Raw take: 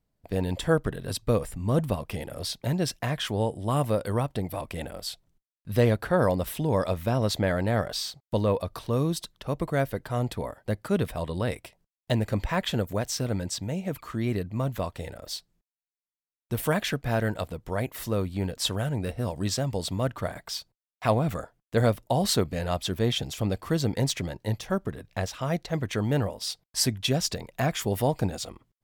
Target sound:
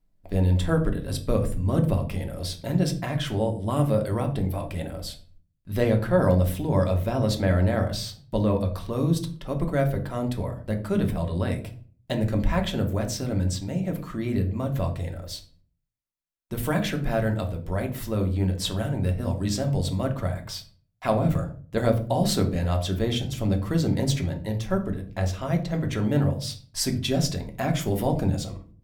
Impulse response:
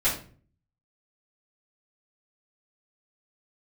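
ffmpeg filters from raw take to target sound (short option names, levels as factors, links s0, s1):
-filter_complex "[0:a]bandreject=f=60:t=h:w=6,bandreject=f=120:t=h:w=6,asplit=2[s0][s1];[1:a]atrim=start_sample=2205,lowshelf=f=490:g=10.5[s2];[s1][s2]afir=irnorm=-1:irlink=0,volume=0.168[s3];[s0][s3]amix=inputs=2:normalize=0,volume=0.668"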